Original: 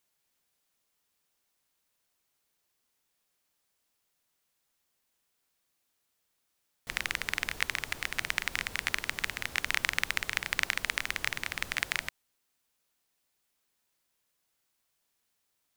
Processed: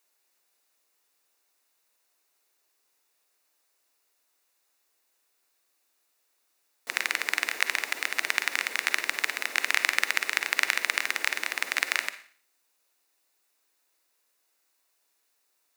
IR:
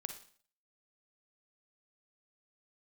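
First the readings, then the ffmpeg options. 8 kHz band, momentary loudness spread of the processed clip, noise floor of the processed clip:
+5.5 dB, 5 LU, −73 dBFS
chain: -filter_complex "[0:a]highpass=frequency=300:width=0.5412,highpass=frequency=300:width=1.3066,bandreject=frequency=3200:width=8.9,asplit=2[link_01][link_02];[1:a]atrim=start_sample=2205[link_03];[link_02][link_03]afir=irnorm=-1:irlink=0,volume=8dB[link_04];[link_01][link_04]amix=inputs=2:normalize=0,volume=-4dB"

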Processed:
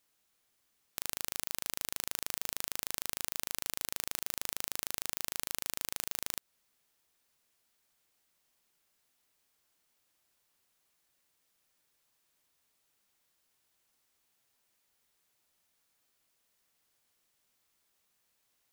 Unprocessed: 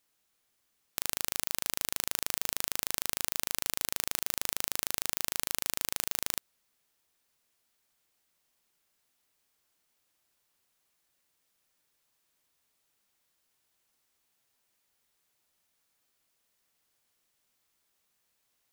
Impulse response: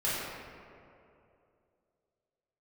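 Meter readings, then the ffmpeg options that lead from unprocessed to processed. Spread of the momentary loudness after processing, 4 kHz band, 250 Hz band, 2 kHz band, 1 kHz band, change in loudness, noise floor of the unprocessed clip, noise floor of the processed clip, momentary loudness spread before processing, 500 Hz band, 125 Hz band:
1 LU, −4.5 dB, −4.5 dB, −4.5 dB, −4.5 dB, −4.5 dB, −77 dBFS, −80 dBFS, 1 LU, −4.5 dB, −4.5 dB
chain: -af "alimiter=limit=-7dB:level=0:latency=1:release=190"

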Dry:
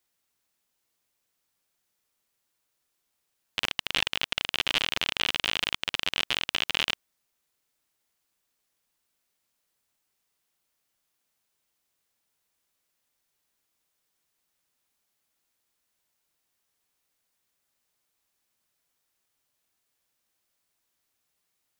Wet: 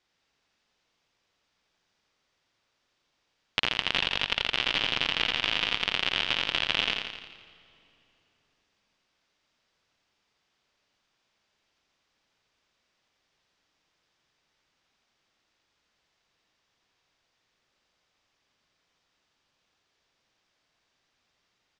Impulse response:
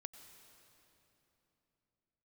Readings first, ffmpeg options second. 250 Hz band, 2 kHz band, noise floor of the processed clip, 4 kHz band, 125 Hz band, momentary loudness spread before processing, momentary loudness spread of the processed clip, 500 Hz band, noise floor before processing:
+2.5 dB, +1.5 dB, −77 dBFS, +1.0 dB, +2.5 dB, 5 LU, 5 LU, +2.0 dB, −79 dBFS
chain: -filter_complex "[0:a]lowpass=frequency=5300:width=0.5412,lowpass=frequency=5300:width=1.3066,bandreject=frequency=4200:width=28,acompressor=threshold=-29dB:ratio=6,aecho=1:1:85|170|255|340|425|510|595|680:0.562|0.321|0.183|0.104|0.0594|0.0338|0.0193|0.011,asplit=2[link_01][link_02];[1:a]atrim=start_sample=2205[link_03];[link_02][link_03]afir=irnorm=-1:irlink=0,volume=-3dB[link_04];[link_01][link_04]amix=inputs=2:normalize=0,volume=4dB"

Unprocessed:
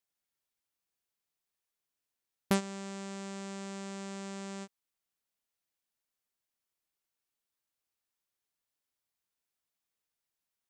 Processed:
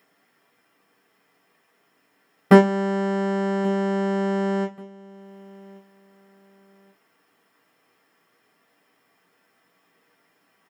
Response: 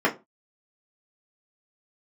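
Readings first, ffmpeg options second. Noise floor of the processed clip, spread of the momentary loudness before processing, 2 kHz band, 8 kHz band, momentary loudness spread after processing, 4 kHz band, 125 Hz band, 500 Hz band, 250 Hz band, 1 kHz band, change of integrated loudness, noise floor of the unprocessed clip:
−67 dBFS, 10 LU, +15.5 dB, can't be measured, 10 LU, +6.5 dB, +17.0 dB, +20.5 dB, +17.5 dB, +17.5 dB, +17.5 dB, below −85 dBFS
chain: -filter_complex "[0:a]acompressor=mode=upward:threshold=-58dB:ratio=2.5,aecho=1:1:1133|2266:0.0708|0.0241[link_01];[1:a]atrim=start_sample=2205[link_02];[link_01][link_02]afir=irnorm=-1:irlink=0,volume=-1dB"

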